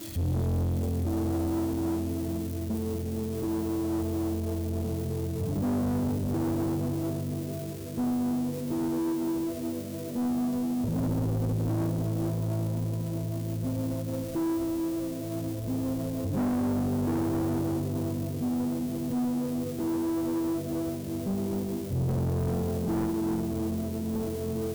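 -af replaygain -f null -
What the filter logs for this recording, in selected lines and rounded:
track_gain = +13.0 dB
track_peak = 0.040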